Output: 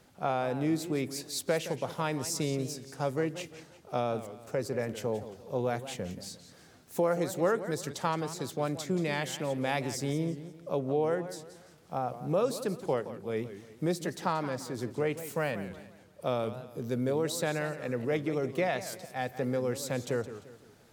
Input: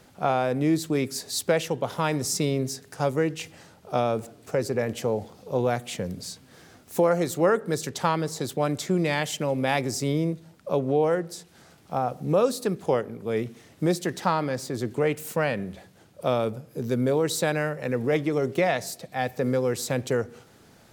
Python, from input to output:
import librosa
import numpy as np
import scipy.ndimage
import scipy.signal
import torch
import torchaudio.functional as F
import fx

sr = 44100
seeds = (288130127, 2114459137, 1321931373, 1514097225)

y = fx.echo_warbled(x, sr, ms=174, feedback_pct=39, rate_hz=2.8, cents=190, wet_db=-13)
y = F.gain(torch.from_numpy(y), -6.5).numpy()